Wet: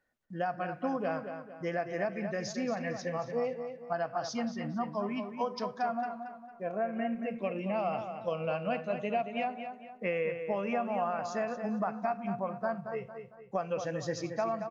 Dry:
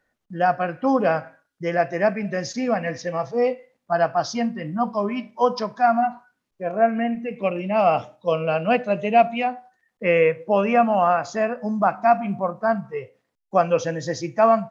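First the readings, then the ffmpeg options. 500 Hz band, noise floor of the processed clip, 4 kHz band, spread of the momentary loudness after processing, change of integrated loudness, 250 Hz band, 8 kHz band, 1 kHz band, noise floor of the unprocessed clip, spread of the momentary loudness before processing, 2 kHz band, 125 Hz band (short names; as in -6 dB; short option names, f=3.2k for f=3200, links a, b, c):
-12.5 dB, -52 dBFS, -10.0 dB, 6 LU, -12.5 dB, -10.5 dB, n/a, -13.5 dB, -77 dBFS, 9 LU, -12.0 dB, -10.0 dB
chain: -filter_complex "[0:a]acompressor=threshold=-21dB:ratio=6,asplit=2[a][b];[b]adelay=227,lowpass=f=4.3k:p=1,volume=-8dB,asplit=2[c][d];[d]adelay=227,lowpass=f=4.3k:p=1,volume=0.41,asplit=2[e][f];[f]adelay=227,lowpass=f=4.3k:p=1,volume=0.41,asplit=2[g][h];[h]adelay=227,lowpass=f=4.3k:p=1,volume=0.41,asplit=2[i][j];[j]adelay=227,lowpass=f=4.3k:p=1,volume=0.41[k];[a][c][e][g][i][k]amix=inputs=6:normalize=0,volume=-8dB"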